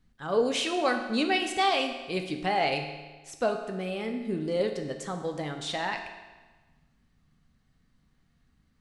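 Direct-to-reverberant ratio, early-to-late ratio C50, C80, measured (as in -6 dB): 4.0 dB, 7.0 dB, 8.5 dB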